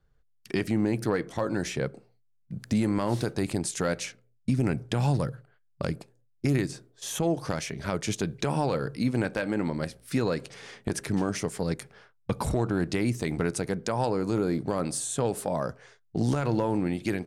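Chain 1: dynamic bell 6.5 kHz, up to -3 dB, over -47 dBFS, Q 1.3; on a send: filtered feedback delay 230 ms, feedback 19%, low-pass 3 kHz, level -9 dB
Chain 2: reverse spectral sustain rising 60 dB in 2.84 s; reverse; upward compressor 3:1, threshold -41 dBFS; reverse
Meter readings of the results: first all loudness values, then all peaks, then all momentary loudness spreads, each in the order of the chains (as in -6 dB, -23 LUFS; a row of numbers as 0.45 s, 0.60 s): -29.0 LUFS, -25.0 LUFS; -13.5 dBFS, -8.0 dBFS; 9 LU, 5 LU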